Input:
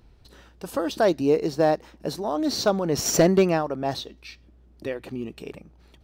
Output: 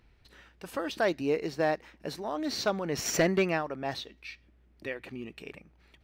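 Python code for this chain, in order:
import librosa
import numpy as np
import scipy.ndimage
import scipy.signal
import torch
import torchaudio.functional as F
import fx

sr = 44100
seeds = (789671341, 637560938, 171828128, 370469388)

y = fx.peak_eq(x, sr, hz=2100.0, db=11.0, octaves=1.2)
y = y * librosa.db_to_amplitude(-8.5)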